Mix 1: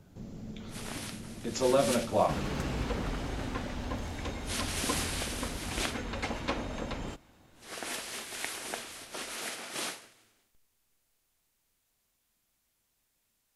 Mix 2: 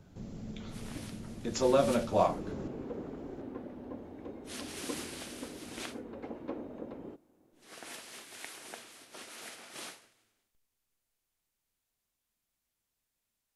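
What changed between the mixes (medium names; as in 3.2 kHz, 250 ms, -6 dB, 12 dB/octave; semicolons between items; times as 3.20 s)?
first sound -8.5 dB; second sound: add band-pass filter 360 Hz, Q 1.8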